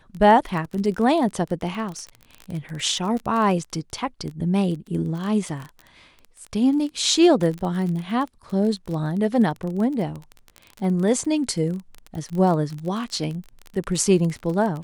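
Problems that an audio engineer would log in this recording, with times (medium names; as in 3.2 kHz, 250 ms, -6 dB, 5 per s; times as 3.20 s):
crackle 24 per s -27 dBFS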